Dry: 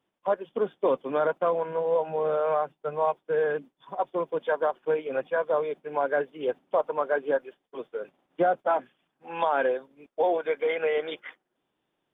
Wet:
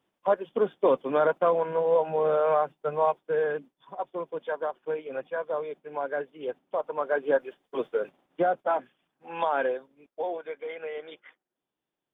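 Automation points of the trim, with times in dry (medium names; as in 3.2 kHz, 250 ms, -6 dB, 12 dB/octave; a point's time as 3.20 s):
2.94 s +2 dB
4.02 s -5 dB
6.76 s -5 dB
7.86 s +8 dB
8.43 s -1.5 dB
9.58 s -1.5 dB
10.58 s -10 dB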